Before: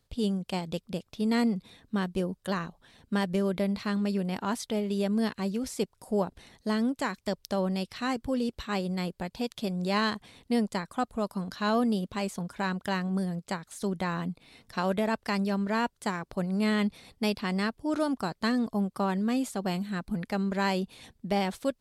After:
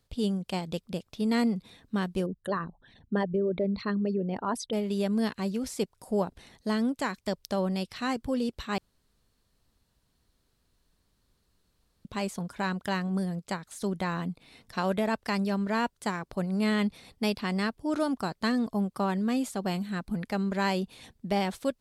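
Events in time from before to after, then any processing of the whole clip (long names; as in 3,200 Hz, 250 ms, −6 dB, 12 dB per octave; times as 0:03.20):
0:02.26–0:04.73: spectral envelope exaggerated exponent 2
0:08.78–0:12.05: fill with room tone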